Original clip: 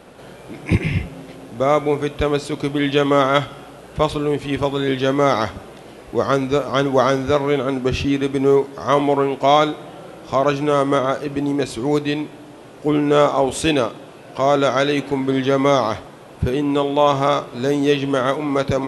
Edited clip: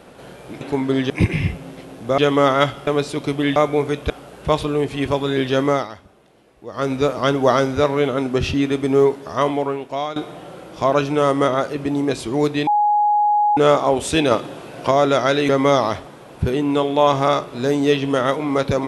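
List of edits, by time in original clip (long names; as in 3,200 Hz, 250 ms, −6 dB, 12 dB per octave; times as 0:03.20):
0:01.69–0:02.23: swap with 0:02.92–0:03.61
0:05.18–0:06.44: duck −15 dB, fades 0.21 s
0:08.63–0:09.67: fade out, to −15.5 dB
0:12.18–0:13.08: beep over 833 Hz −13 dBFS
0:13.82–0:14.42: clip gain +5 dB
0:15.00–0:15.49: move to 0:00.61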